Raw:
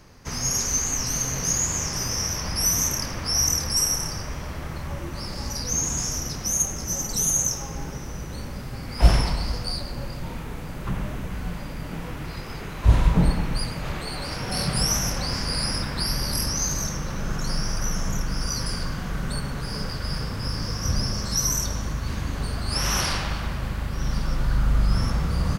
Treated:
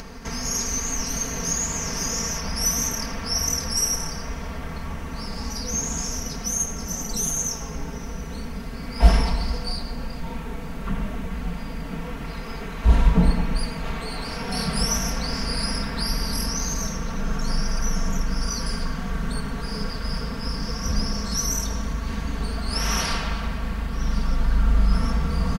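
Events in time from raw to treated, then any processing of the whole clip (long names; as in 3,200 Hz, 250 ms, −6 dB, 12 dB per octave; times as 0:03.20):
0:01.32–0:01.85: delay throw 530 ms, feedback 10%, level −6 dB
whole clip: high-shelf EQ 5,200 Hz −5.5 dB; comb filter 4.4 ms, depth 82%; upward compression, threshold −27 dBFS; level −1 dB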